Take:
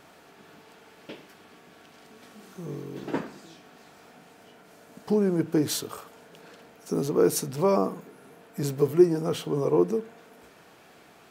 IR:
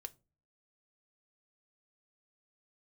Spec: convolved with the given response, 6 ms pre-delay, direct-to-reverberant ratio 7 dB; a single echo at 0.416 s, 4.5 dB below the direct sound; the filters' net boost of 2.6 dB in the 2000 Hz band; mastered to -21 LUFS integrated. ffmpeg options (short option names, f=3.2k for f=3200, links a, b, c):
-filter_complex "[0:a]equalizer=f=2k:t=o:g=3.5,aecho=1:1:416:0.596,asplit=2[a][b];[1:a]atrim=start_sample=2205,adelay=6[c];[b][c]afir=irnorm=-1:irlink=0,volume=-2dB[d];[a][d]amix=inputs=2:normalize=0,volume=3dB"